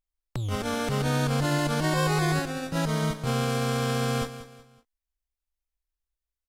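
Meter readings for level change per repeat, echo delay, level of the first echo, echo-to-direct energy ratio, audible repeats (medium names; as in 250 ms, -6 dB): -9.0 dB, 187 ms, -13.0 dB, -12.5 dB, 3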